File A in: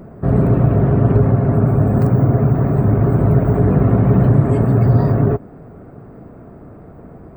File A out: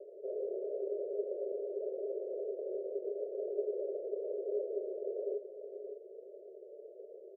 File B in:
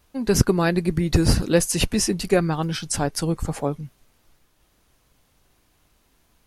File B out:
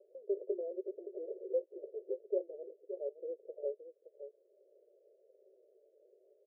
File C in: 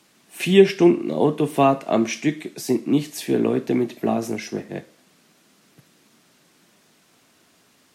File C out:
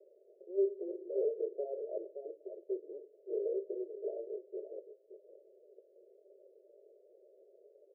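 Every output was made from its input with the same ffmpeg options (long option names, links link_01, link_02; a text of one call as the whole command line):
ffmpeg -i in.wav -af "acompressor=mode=upward:threshold=-28dB:ratio=2.5,flanger=delay=5.1:depth=4.1:regen=-49:speed=1.1:shape=sinusoidal,aecho=1:1:569:0.211,aresample=11025,asoftclip=type=tanh:threshold=-20.5dB,aresample=44100,asuperpass=centerf=480:order=12:qfactor=2,volume=-4dB" out.wav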